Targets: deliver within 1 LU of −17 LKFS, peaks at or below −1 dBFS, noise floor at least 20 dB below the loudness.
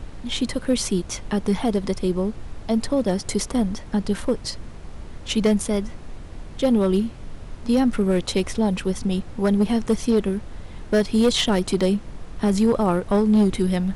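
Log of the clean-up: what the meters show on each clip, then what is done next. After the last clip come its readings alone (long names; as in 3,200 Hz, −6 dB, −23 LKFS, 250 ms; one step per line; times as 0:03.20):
share of clipped samples 0.9%; peaks flattened at −12.0 dBFS; background noise floor −38 dBFS; target noise floor −43 dBFS; integrated loudness −22.5 LKFS; sample peak −12.0 dBFS; target loudness −17.0 LKFS
→ clipped peaks rebuilt −12 dBFS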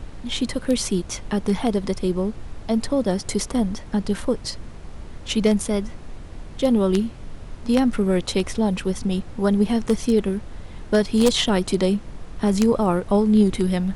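share of clipped samples 0.0%; background noise floor −38 dBFS; target noise floor −42 dBFS
→ noise reduction from a noise print 6 dB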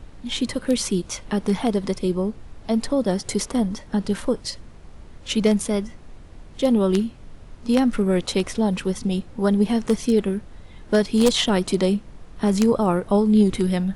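background noise floor −44 dBFS; integrated loudness −22.0 LKFS; sample peak −3.0 dBFS; target loudness −17.0 LKFS
→ level +5 dB
brickwall limiter −1 dBFS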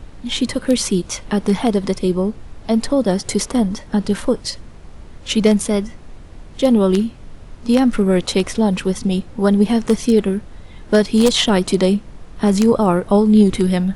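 integrated loudness −17.0 LKFS; sample peak −1.0 dBFS; background noise floor −39 dBFS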